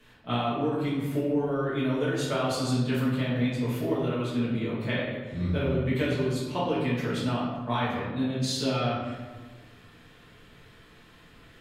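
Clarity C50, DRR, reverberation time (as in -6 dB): 0.0 dB, -10.0 dB, 1.3 s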